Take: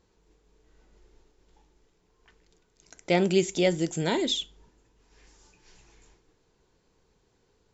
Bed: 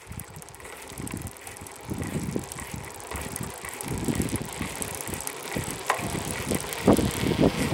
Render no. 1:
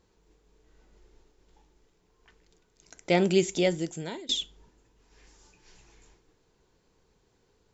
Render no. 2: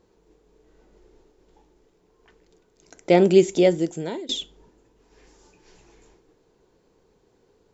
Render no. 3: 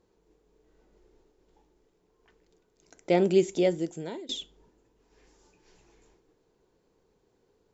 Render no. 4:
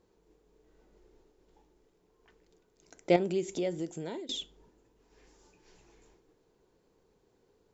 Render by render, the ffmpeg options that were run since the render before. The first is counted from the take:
ffmpeg -i in.wav -filter_complex "[0:a]asplit=2[link_01][link_02];[link_01]atrim=end=4.29,asetpts=PTS-STARTPTS,afade=type=out:start_time=3.53:duration=0.76:silence=0.0707946[link_03];[link_02]atrim=start=4.29,asetpts=PTS-STARTPTS,afade=type=in:duration=0.004:curve=hsin:silence=0.0707946[link_04];[link_03][link_04]concat=n=2:v=0:a=1" out.wav
ffmpeg -i in.wav -af "equalizer=frequency=410:width=0.53:gain=9" out.wav
ffmpeg -i in.wav -af "volume=-7dB" out.wav
ffmpeg -i in.wav -filter_complex "[0:a]asettb=1/sr,asplit=3[link_01][link_02][link_03];[link_01]atrim=end=3.164[link_04];[link_02]atrim=start=3.16:end=4.34,asetpts=PTS-STARTPTS,afade=type=in:duration=0.004:curve=qsin,afade=type=out:start_time=1.176:duration=0.004:curve=qsin,acompressor=threshold=-34dB:ratio=2:attack=3.2:release=140:knee=1:detection=peak[link_05];[link_03]atrim=start=4.336[link_06];[link_04][link_05]acrossfade=duration=0.004:curve1=hsin:curve2=qsin[link_07];[link_07][link_06]acrossfade=duration=0.004:curve1=qsin:curve2=hsin" out.wav

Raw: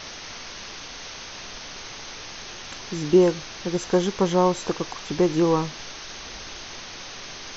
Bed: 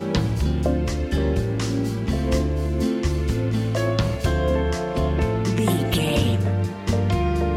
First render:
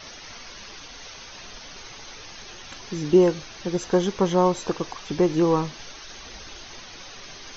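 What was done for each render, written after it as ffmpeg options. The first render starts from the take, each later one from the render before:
ffmpeg -i in.wav -af "afftdn=noise_reduction=8:noise_floor=-39" out.wav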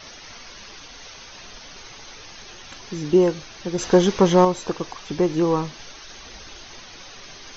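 ffmpeg -i in.wav -filter_complex "[0:a]asettb=1/sr,asplit=3[link_01][link_02][link_03];[link_01]atrim=end=3.784[link_04];[link_02]atrim=start=3.78:end=4.45,asetpts=PTS-STARTPTS,afade=type=in:duration=0.004:curve=qsin,afade=type=out:start_time=0.666:duration=0.004:curve=qsin,acontrast=59[link_05];[link_03]atrim=start=4.446[link_06];[link_04][link_05]acrossfade=duration=0.004:curve1=hsin:curve2=qsin[link_07];[link_07][link_06]acrossfade=duration=0.004:curve1=qsin:curve2=hsin" out.wav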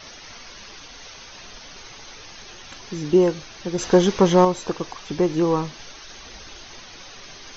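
ffmpeg -i in.wav -af anull out.wav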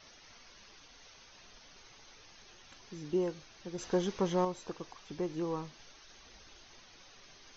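ffmpeg -i in.wav -af "volume=-15.5dB" out.wav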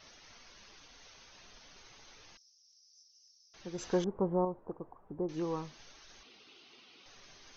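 ffmpeg -i in.wav -filter_complex "[0:a]asettb=1/sr,asplit=3[link_01][link_02][link_03];[link_01]atrim=end=2.374[link_04];[link_02]atrim=start=2.37:end=3.54,asetpts=PTS-STARTPTS,afade=type=in:duration=0.004:curve=qsin,afade=type=out:start_time=1.166:duration=0.004:curve=qsin,asuperpass=centerf=5400:order=4:qfactor=5.4[link_05];[link_03]atrim=start=3.536[link_06];[link_04][link_05]acrossfade=duration=0.004:curve1=hsin:curve2=qsin[link_07];[link_07][link_06]acrossfade=duration=0.004:curve1=qsin:curve2=hsin,asettb=1/sr,asplit=3[link_08][link_09][link_10];[link_08]atrim=end=4.044[link_11];[link_09]atrim=start=4.04:end=5.29,asetpts=PTS-STARTPTS,afade=type=in:duration=0.004:curve=qsin,afade=type=out:start_time=1.246:duration=0.004:curve=qsin,lowpass=frequency=1000:width=0.5412,lowpass=frequency=1000:width=1.3066[link_12];[link_10]atrim=start=5.286[link_13];[link_11][link_12]acrossfade=duration=0.004:curve1=hsin:curve2=qsin[link_14];[link_14][link_13]acrossfade=duration=0.004:curve1=qsin:curve2=hsin,asettb=1/sr,asplit=3[link_15][link_16][link_17];[link_15]atrim=end=6.234[link_18];[link_16]atrim=start=6.23:end=7.06,asetpts=PTS-STARTPTS,afade=type=in:duration=0.004:curve=qsin,afade=type=out:start_time=0.826:duration=0.004:curve=qsin,highpass=230,equalizer=frequency=260:width_type=q:width=4:gain=4,equalizer=frequency=410:width_type=q:width=4:gain=4,equalizer=frequency=590:width_type=q:width=4:gain=-9,equalizer=frequency=930:width_type=q:width=4:gain=-6,equalizer=frequency=1700:width_type=q:width=4:gain=-10,equalizer=frequency=2800:width_type=q:width=4:gain=5,lowpass=frequency=4800:width=0.5412,lowpass=frequency=4800:width=1.3066[link_19];[link_17]atrim=start=7.056[link_20];[link_18][link_19]acrossfade=duration=0.004:curve1=hsin:curve2=qsin[link_21];[link_21][link_20]acrossfade=duration=0.004:curve1=qsin:curve2=hsin" out.wav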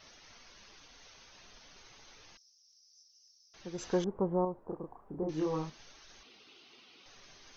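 ffmpeg -i in.wav -filter_complex "[0:a]asettb=1/sr,asplit=3[link_01][link_02][link_03];[link_01]atrim=end=4.664[link_04];[link_02]atrim=start=4.66:end=5.7,asetpts=PTS-STARTPTS,afade=type=in:duration=0.004:curve=qsin,afade=type=out:start_time=1.036:duration=0.004:curve=qsin,asplit=2[link_05][link_06];[link_06]adelay=32,volume=-2dB[link_07];[link_05][link_07]amix=inputs=2:normalize=0,atrim=end_sample=45864[link_08];[link_03]atrim=start=5.696[link_09];[link_04][link_08]acrossfade=duration=0.004:curve1=hsin:curve2=qsin[link_10];[link_10][link_09]acrossfade=duration=0.004:curve1=qsin:curve2=hsin" out.wav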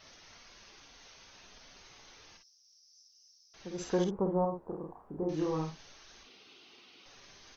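ffmpeg -i in.wav -af "aecho=1:1:51|62:0.473|0.211" out.wav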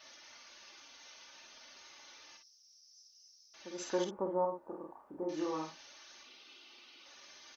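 ffmpeg -i in.wav -af "highpass=frequency=610:poles=1,aecho=1:1:3.4:0.48" out.wav

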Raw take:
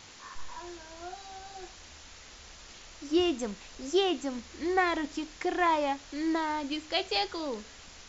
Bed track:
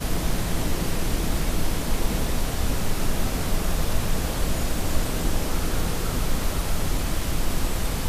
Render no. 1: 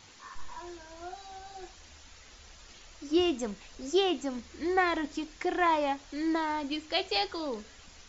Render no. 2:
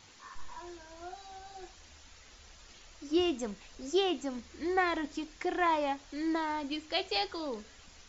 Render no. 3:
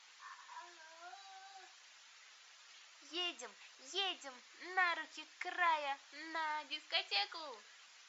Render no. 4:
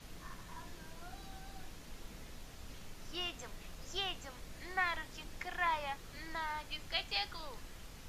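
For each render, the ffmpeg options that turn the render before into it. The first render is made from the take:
ffmpeg -i in.wav -af "afftdn=noise_reduction=6:noise_floor=-51" out.wav
ffmpeg -i in.wav -af "volume=-2.5dB" out.wav
ffmpeg -i in.wav -af "highpass=1200,highshelf=frequency=5400:gain=-9.5" out.wav
ffmpeg -i in.wav -i bed.wav -filter_complex "[1:a]volume=-26.5dB[link_01];[0:a][link_01]amix=inputs=2:normalize=0" out.wav

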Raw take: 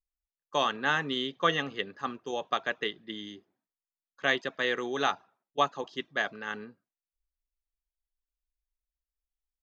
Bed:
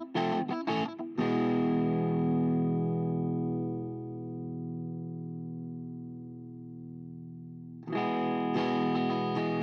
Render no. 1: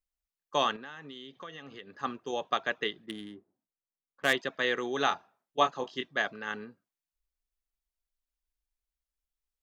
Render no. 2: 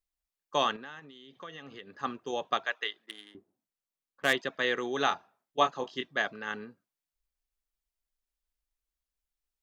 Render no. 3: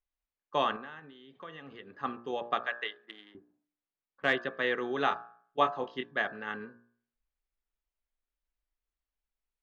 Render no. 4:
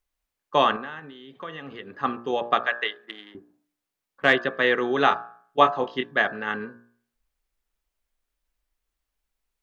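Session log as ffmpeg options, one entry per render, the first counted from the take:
ffmpeg -i in.wav -filter_complex "[0:a]asettb=1/sr,asplit=3[link_01][link_02][link_03];[link_01]atrim=end=0.764[link_04];[link_02]atrim=start=0.76:end=1.98,asetpts=PTS-STARTPTS,afade=type=in:duration=0.004:curve=qsin,afade=type=out:start_time=1.216:duration=0.004:curve=qsin,acompressor=threshold=-44dB:ratio=4:attack=3.2:release=140:knee=1:detection=peak[link_05];[link_03]atrim=start=1.976[link_06];[link_04][link_05]acrossfade=duration=0.004:curve1=hsin:curve2=qsin[link_07];[link_07][link_06]acrossfade=duration=0.004:curve1=qsin:curve2=hsin,asettb=1/sr,asplit=3[link_08][link_09][link_10];[link_08]atrim=end=3.064[link_11];[link_09]atrim=start=3.06:end=4.33,asetpts=PTS-STARTPTS,afade=type=in:duration=0.004:curve=qsin,afade=type=out:start_time=1.266:duration=0.004:curve=qsin,adynamicsmooth=sensitivity=7:basefreq=990[link_12];[link_10]atrim=start=4.326[link_13];[link_11][link_12]acrossfade=duration=0.004:curve1=hsin:curve2=qsin[link_14];[link_14][link_13]acrossfade=duration=0.004:curve1=qsin:curve2=hsin,asettb=1/sr,asplit=3[link_15][link_16][link_17];[link_15]atrim=end=5.094[link_18];[link_16]atrim=start=5.09:end=6.08,asetpts=PTS-STARTPTS,afade=type=in:duration=0.004:curve=qsin,afade=type=out:start_time=0.986:duration=0.004:curve=qsin,asplit=2[link_19][link_20];[link_20]adelay=24,volume=-6dB[link_21];[link_19][link_21]amix=inputs=2:normalize=0,atrim=end_sample=43659[link_22];[link_17]atrim=start=6.076[link_23];[link_18][link_22]acrossfade=duration=0.004:curve1=hsin:curve2=qsin[link_24];[link_24][link_23]acrossfade=duration=0.004:curve1=qsin:curve2=hsin" out.wav
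ffmpeg -i in.wav -filter_complex "[0:a]asettb=1/sr,asplit=3[link_01][link_02][link_03];[link_01]atrim=end=0.994[link_04];[link_02]atrim=start=0.99:end=1.43,asetpts=PTS-STARTPTS,afade=type=in:duration=0.004:curve=qsin,afade=type=out:start_time=0.436:duration=0.004:curve=qsin,acompressor=threshold=-47dB:ratio=6:attack=3.2:release=140:knee=1:detection=peak[link_05];[link_03]atrim=start=1.426[link_06];[link_04][link_05]acrossfade=duration=0.004:curve1=hsin:curve2=qsin[link_07];[link_07][link_06]acrossfade=duration=0.004:curve1=qsin:curve2=hsin,asettb=1/sr,asplit=3[link_08][link_09][link_10];[link_08]atrim=end=2.664[link_11];[link_09]atrim=start=2.66:end=3.35,asetpts=PTS-STARTPTS,afade=type=in:duration=0.004:curve=qsin,afade=type=out:start_time=0.686:duration=0.004:curve=qsin,highpass=730[link_12];[link_10]atrim=start=3.346[link_13];[link_11][link_12]acrossfade=duration=0.004:curve1=hsin:curve2=qsin[link_14];[link_14][link_13]acrossfade=duration=0.004:curve1=qsin:curve2=hsin" out.wav
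ffmpeg -i in.wav -af "lowpass=2700,bandreject=frequency=59.2:width_type=h:width=4,bandreject=frequency=118.4:width_type=h:width=4,bandreject=frequency=177.6:width_type=h:width=4,bandreject=frequency=236.8:width_type=h:width=4,bandreject=frequency=296:width_type=h:width=4,bandreject=frequency=355.2:width_type=h:width=4,bandreject=frequency=414.4:width_type=h:width=4,bandreject=frequency=473.6:width_type=h:width=4,bandreject=frequency=532.8:width_type=h:width=4,bandreject=frequency=592:width_type=h:width=4,bandreject=frequency=651.2:width_type=h:width=4,bandreject=frequency=710.4:width_type=h:width=4,bandreject=frequency=769.6:width_type=h:width=4,bandreject=frequency=828.8:width_type=h:width=4,bandreject=frequency=888:width_type=h:width=4,bandreject=frequency=947.2:width_type=h:width=4,bandreject=frequency=1006.4:width_type=h:width=4,bandreject=frequency=1065.6:width_type=h:width=4,bandreject=frequency=1124.8:width_type=h:width=4,bandreject=frequency=1184:width_type=h:width=4,bandreject=frequency=1243.2:width_type=h:width=4,bandreject=frequency=1302.4:width_type=h:width=4,bandreject=frequency=1361.6:width_type=h:width=4,bandreject=frequency=1420.8:width_type=h:width=4,bandreject=frequency=1480:width_type=h:width=4,bandreject=frequency=1539.2:width_type=h:width=4,bandreject=frequency=1598.4:width_type=h:width=4,bandreject=frequency=1657.6:width_type=h:width=4,bandreject=frequency=1716.8:width_type=h:width=4,bandreject=frequency=1776:width_type=h:width=4" out.wav
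ffmpeg -i in.wav -af "volume=9dB" out.wav

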